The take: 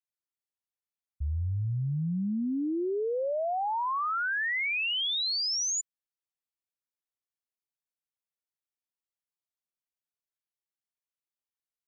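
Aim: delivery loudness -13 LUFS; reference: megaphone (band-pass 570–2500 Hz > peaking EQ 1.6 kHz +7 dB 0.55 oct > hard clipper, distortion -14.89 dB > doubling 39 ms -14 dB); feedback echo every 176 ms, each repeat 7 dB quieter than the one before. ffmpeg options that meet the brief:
-filter_complex "[0:a]highpass=570,lowpass=2500,equalizer=f=1600:t=o:w=0.55:g=7,aecho=1:1:176|352|528|704|880:0.447|0.201|0.0905|0.0407|0.0183,asoftclip=type=hard:threshold=0.0631,asplit=2[s0][s1];[s1]adelay=39,volume=0.2[s2];[s0][s2]amix=inputs=2:normalize=0,volume=6.31"

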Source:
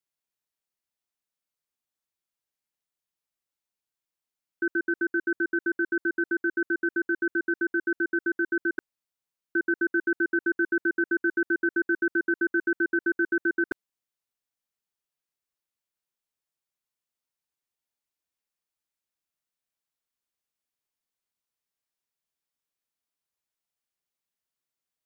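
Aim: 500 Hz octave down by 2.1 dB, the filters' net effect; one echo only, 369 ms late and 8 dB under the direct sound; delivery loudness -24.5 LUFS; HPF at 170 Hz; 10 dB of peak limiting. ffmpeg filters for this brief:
-af "highpass=170,equalizer=f=500:t=o:g=-4,alimiter=level_in=1.58:limit=0.0631:level=0:latency=1,volume=0.631,aecho=1:1:369:0.398,volume=5.31"

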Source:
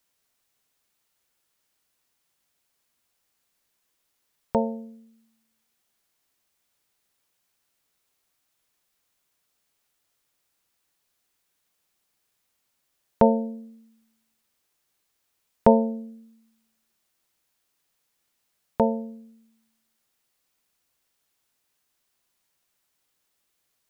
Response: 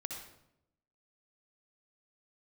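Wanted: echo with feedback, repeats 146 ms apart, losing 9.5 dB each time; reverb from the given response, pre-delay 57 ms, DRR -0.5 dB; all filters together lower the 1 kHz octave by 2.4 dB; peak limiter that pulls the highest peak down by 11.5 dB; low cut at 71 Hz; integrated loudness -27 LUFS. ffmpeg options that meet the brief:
-filter_complex "[0:a]highpass=71,equalizer=f=1000:t=o:g=-3,alimiter=limit=0.168:level=0:latency=1,aecho=1:1:146|292|438|584:0.335|0.111|0.0365|0.012,asplit=2[s0][s1];[1:a]atrim=start_sample=2205,adelay=57[s2];[s1][s2]afir=irnorm=-1:irlink=0,volume=1.12[s3];[s0][s3]amix=inputs=2:normalize=0,volume=0.891"

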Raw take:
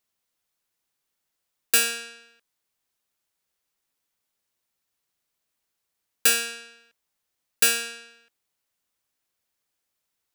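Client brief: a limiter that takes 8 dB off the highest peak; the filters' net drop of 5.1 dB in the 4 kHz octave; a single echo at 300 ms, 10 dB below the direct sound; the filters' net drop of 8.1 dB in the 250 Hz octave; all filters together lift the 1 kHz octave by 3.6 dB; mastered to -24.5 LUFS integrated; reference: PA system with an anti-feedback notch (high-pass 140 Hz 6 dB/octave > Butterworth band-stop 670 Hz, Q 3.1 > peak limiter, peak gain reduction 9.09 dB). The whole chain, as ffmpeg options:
-af "equalizer=f=250:t=o:g=-7.5,equalizer=f=1000:t=o:g=8.5,equalizer=f=4000:t=o:g=-7.5,alimiter=limit=0.188:level=0:latency=1,highpass=f=140:p=1,asuperstop=centerf=670:order=8:qfactor=3.1,aecho=1:1:300:0.316,volume=2.82,alimiter=limit=0.188:level=0:latency=1"

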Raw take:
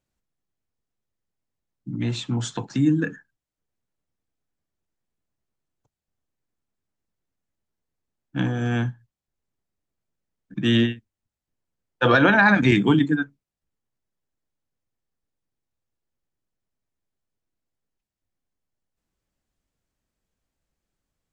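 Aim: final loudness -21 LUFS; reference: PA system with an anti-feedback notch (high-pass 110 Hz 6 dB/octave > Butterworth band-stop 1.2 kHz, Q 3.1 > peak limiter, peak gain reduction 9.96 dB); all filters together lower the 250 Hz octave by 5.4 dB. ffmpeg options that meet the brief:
-af "highpass=f=110:p=1,asuperstop=centerf=1200:order=8:qfactor=3.1,equalizer=f=250:t=o:g=-6,volume=2.24,alimiter=limit=0.335:level=0:latency=1"

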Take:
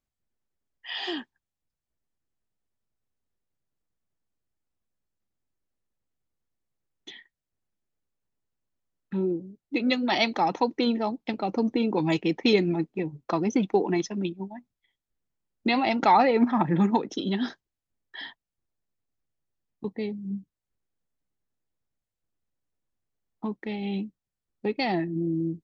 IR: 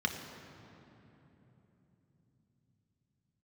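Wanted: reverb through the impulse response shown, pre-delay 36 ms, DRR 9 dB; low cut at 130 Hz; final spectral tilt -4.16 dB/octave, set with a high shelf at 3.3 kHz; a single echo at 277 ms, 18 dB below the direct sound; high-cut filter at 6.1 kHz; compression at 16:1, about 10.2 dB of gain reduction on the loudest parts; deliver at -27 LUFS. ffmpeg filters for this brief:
-filter_complex "[0:a]highpass=130,lowpass=6100,highshelf=f=3300:g=3.5,acompressor=threshold=0.0562:ratio=16,aecho=1:1:277:0.126,asplit=2[s0][s1];[1:a]atrim=start_sample=2205,adelay=36[s2];[s1][s2]afir=irnorm=-1:irlink=0,volume=0.168[s3];[s0][s3]amix=inputs=2:normalize=0,volume=1.68"

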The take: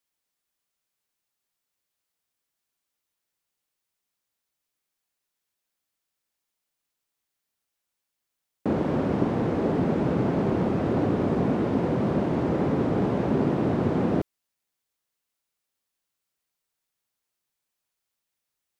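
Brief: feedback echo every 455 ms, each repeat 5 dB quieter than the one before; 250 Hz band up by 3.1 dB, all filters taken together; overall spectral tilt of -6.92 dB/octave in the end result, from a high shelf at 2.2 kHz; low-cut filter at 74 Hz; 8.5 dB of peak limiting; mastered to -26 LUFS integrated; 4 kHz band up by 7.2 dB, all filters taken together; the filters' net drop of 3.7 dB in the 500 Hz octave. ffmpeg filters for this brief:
-af "highpass=74,equalizer=f=250:t=o:g=6,equalizer=f=500:t=o:g=-8,highshelf=f=2200:g=6,equalizer=f=4000:t=o:g=4,alimiter=limit=0.141:level=0:latency=1,aecho=1:1:455|910|1365|1820|2275|2730|3185:0.562|0.315|0.176|0.0988|0.0553|0.031|0.0173,volume=0.891"

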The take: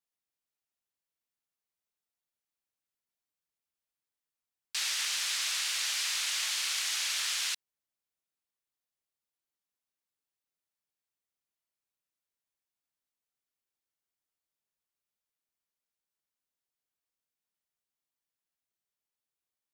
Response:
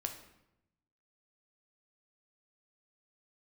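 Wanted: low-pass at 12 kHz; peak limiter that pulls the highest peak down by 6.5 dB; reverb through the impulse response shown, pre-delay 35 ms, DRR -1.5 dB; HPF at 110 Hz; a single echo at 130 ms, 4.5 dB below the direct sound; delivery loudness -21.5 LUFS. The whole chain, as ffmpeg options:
-filter_complex "[0:a]highpass=110,lowpass=12000,alimiter=level_in=1.26:limit=0.0631:level=0:latency=1,volume=0.794,aecho=1:1:130:0.596,asplit=2[s0][s1];[1:a]atrim=start_sample=2205,adelay=35[s2];[s1][s2]afir=irnorm=-1:irlink=0,volume=1.19[s3];[s0][s3]amix=inputs=2:normalize=0,volume=2.24"

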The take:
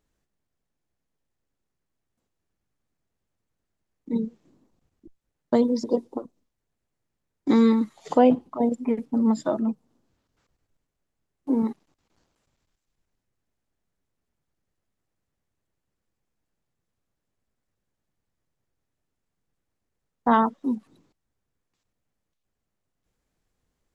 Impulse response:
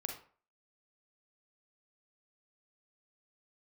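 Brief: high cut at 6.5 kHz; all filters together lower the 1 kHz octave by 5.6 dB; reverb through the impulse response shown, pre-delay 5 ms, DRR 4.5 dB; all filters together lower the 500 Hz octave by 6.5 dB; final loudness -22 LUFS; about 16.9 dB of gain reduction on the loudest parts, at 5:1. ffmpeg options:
-filter_complex "[0:a]lowpass=6500,equalizer=f=500:t=o:g=-6,equalizer=f=1000:t=o:g=-5,acompressor=threshold=0.0158:ratio=5,asplit=2[s0][s1];[1:a]atrim=start_sample=2205,adelay=5[s2];[s1][s2]afir=irnorm=-1:irlink=0,volume=0.631[s3];[s0][s3]amix=inputs=2:normalize=0,volume=6.68"

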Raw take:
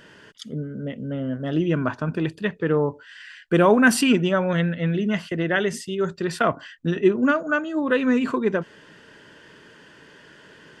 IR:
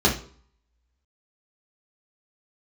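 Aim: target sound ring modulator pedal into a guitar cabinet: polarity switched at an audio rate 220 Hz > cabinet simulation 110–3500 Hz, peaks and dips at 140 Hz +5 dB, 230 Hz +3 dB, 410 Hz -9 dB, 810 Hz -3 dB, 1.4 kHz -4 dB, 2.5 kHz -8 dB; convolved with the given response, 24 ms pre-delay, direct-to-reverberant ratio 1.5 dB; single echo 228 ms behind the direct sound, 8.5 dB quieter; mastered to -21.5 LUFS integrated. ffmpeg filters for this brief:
-filter_complex "[0:a]aecho=1:1:228:0.376,asplit=2[s0][s1];[1:a]atrim=start_sample=2205,adelay=24[s2];[s1][s2]afir=irnorm=-1:irlink=0,volume=0.119[s3];[s0][s3]amix=inputs=2:normalize=0,aeval=exprs='val(0)*sgn(sin(2*PI*220*n/s))':c=same,highpass=110,equalizer=f=140:t=q:w=4:g=5,equalizer=f=230:t=q:w=4:g=3,equalizer=f=410:t=q:w=4:g=-9,equalizer=f=810:t=q:w=4:g=-3,equalizer=f=1400:t=q:w=4:g=-4,equalizer=f=2500:t=q:w=4:g=-8,lowpass=f=3500:w=0.5412,lowpass=f=3500:w=1.3066,volume=0.841"

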